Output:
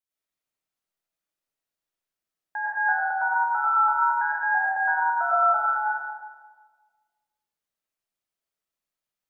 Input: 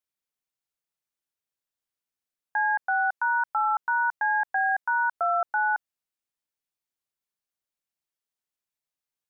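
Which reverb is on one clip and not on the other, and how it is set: algorithmic reverb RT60 1.5 s, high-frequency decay 0.4×, pre-delay 65 ms, DRR -8 dB; trim -5.5 dB

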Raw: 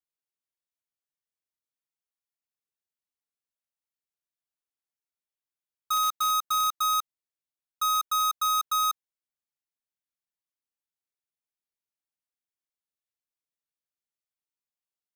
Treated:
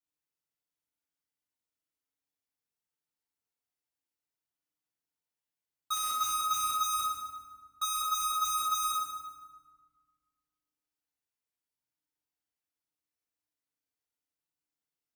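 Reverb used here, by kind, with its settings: FDN reverb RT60 1.5 s, low-frequency decay 1.55×, high-frequency decay 0.65×, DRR -6.5 dB; trim -6.5 dB

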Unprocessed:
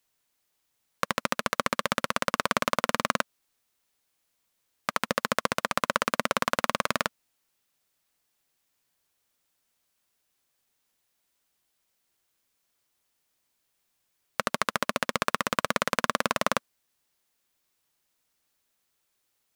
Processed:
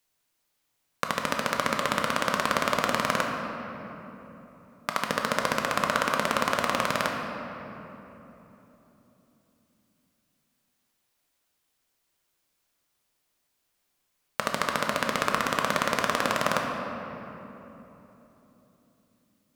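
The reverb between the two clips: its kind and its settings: simulated room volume 210 m³, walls hard, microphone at 0.43 m; trim -1 dB

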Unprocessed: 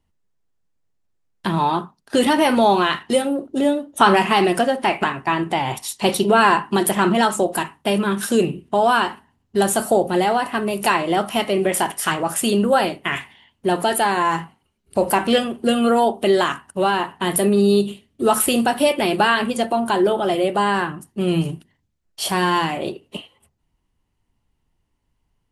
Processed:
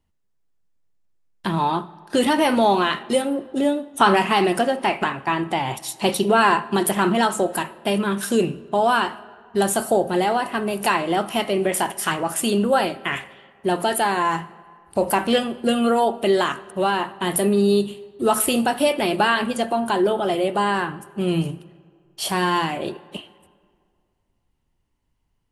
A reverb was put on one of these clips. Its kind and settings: algorithmic reverb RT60 2.1 s, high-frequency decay 0.6×, pre-delay 40 ms, DRR 20 dB; trim -2 dB

